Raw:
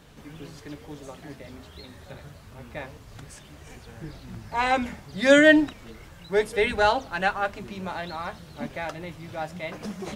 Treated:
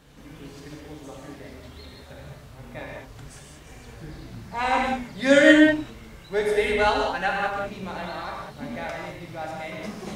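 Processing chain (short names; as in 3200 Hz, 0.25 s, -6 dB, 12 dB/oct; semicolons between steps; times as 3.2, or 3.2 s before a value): non-linear reverb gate 0.23 s flat, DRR -1.5 dB; gain -3 dB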